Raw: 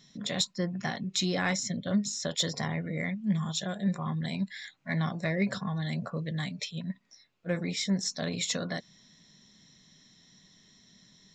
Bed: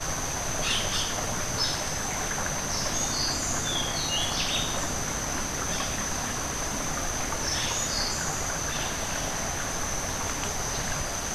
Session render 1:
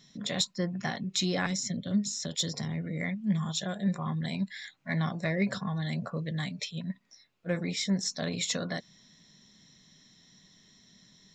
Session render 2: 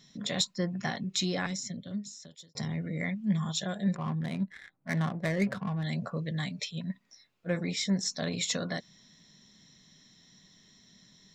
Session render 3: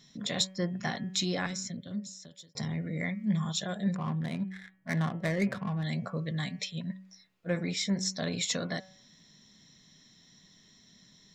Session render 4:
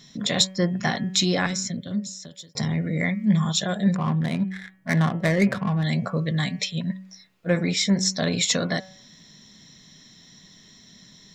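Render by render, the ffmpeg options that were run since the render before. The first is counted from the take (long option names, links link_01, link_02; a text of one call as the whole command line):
ffmpeg -i in.wav -filter_complex "[0:a]asettb=1/sr,asplit=3[link_01][link_02][link_03];[link_01]atrim=end=1.464[link_04];[link_02]atrim=start=1.46:end=3.01,asetpts=PTS-STARTPTS,afade=type=in:duration=0.004:curve=qsin,afade=type=out:start_time=1.546:duration=0.004:curve=qsin,acrossover=split=400|3000[link_05][link_06][link_07];[link_06]acompressor=threshold=-45dB:ratio=6:attack=3.2:release=140:knee=2.83:detection=peak[link_08];[link_05][link_08][link_07]amix=inputs=3:normalize=0[link_09];[link_03]atrim=start=3.006[link_10];[link_04][link_09]acrossfade=duration=0.004:curve1=hsin:curve2=qsin[link_11];[link_11][link_10]acrossfade=duration=0.004:curve1=qsin:curve2=hsin" out.wav
ffmpeg -i in.wav -filter_complex "[0:a]asettb=1/sr,asplit=3[link_01][link_02][link_03];[link_01]atrim=end=3.954[link_04];[link_02]atrim=start=3.95:end=5.84,asetpts=PTS-STARTPTS,afade=type=in:duration=0.004:curve=qsin,afade=type=out:start_time=1.886:duration=0.004:curve=qsin,adynamicsmooth=sensitivity=6:basefreq=790[link_05];[link_03]atrim=start=5.836[link_06];[link_04][link_05]acrossfade=duration=0.004:curve1=hsin:curve2=qsin[link_07];[link_07][link_06]acrossfade=duration=0.004:curve1=qsin:curve2=hsin,asplit=2[link_08][link_09];[link_08]atrim=end=2.55,asetpts=PTS-STARTPTS,afade=type=out:start_time=1.05:duration=1.5[link_10];[link_09]atrim=start=2.55,asetpts=PTS-STARTPTS,afade=type=in:duration=0.004:curve=hsin[link_11];[link_10][link_11]concat=n=2:v=0:a=1" out.wav
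ffmpeg -i in.wav -af "bandreject=frequency=188.7:width_type=h:width=4,bandreject=frequency=377.4:width_type=h:width=4,bandreject=frequency=566.1:width_type=h:width=4,bandreject=frequency=754.8:width_type=h:width=4,bandreject=frequency=943.5:width_type=h:width=4,bandreject=frequency=1132.2:width_type=h:width=4,bandreject=frequency=1320.9:width_type=h:width=4,bandreject=frequency=1509.6:width_type=h:width=4,bandreject=frequency=1698.3:width_type=h:width=4,bandreject=frequency=1887:width_type=h:width=4,bandreject=frequency=2075.7:width_type=h:width=4,bandreject=frequency=2264.4:width_type=h:width=4,bandreject=frequency=2453.1:width_type=h:width=4,bandreject=frequency=2641.8:width_type=h:width=4,bandreject=frequency=2830.5:width_type=h:width=4,bandreject=frequency=3019.2:width_type=h:width=4,bandreject=frequency=3207.9:width_type=h:width=4" out.wav
ffmpeg -i in.wav -af "volume=9dB" out.wav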